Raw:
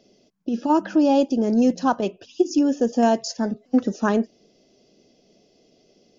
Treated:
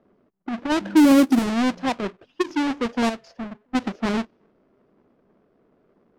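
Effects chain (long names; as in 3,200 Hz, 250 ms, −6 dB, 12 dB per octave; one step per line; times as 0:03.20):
each half-wave held at its own peak
0:00.81–0:01.39: parametric band 240 Hz +10 dB 1.7 octaves
0:03.09–0:03.75: downward compressor 2 to 1, threshold −27 dBFS, peak gain reduction 8.5 dB
low-pass that shuts in the quiet parts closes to 1,500 Hz, open at −5.5 dBFS
level −7.5 dB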